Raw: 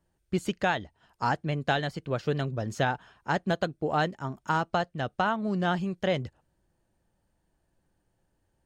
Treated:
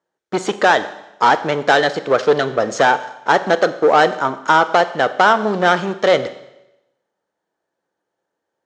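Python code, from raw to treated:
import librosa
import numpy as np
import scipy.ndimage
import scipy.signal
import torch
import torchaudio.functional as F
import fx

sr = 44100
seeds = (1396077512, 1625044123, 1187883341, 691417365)

y = fx.leveller(x, sr, passes=3)
y = fx.cabinet(y, sr, low_hz=410.0, low_slope=12, high_hz=6600.0, hz=(460.0, 1300.0, 2700.0, 4700.0), db=(5, 3, -6, -5))
y = fx.rev_schroeder(y, sr, rt60_s=0.91, comb_ms=30, drr_db=12.5)
y = F.gain(torch.from_numpy(y), 8.0).numpy()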